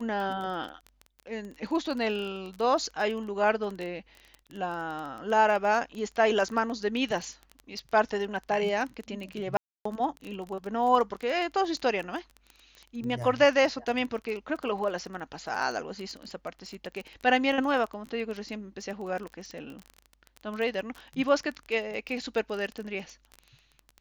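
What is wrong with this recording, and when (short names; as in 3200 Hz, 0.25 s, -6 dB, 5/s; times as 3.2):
crackle 20/s -33 dBFS
9.57–9.85 gap 0.284 s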